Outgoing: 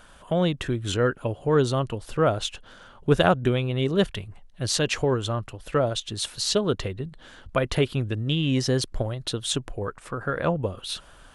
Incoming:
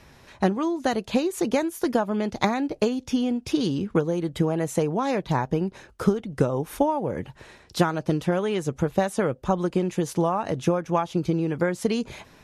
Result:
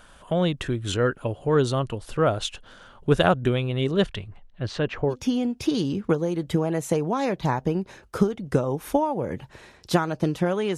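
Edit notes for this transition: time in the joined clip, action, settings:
outgoing
0:03.91–0:05.16: low-pass filter 9,700 Hz → 1,100 Hz
0:05.12: continue with incoming from 0:02.98, crossfade 0.08 s

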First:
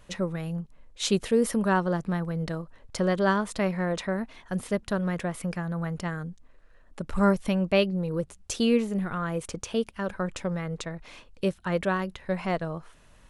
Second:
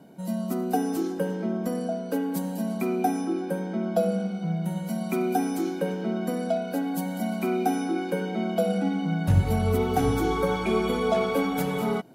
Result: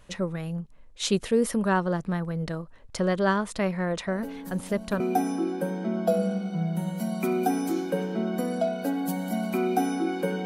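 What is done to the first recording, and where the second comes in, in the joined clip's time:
first
0:04.07: mix in second from 0:01.96 0.93 s −10.5 dB
0:05.00: continue with second from 0:02.89

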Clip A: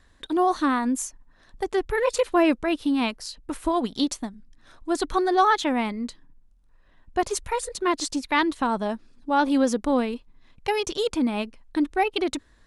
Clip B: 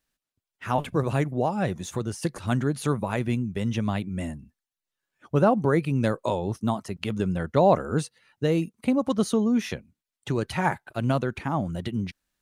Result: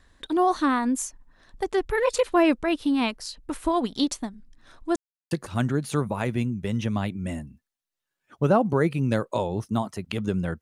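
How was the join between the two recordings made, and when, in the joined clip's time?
clip A
0:04.96–0:05.31: silence
0:05.31: continue with clip B from 0:02.23

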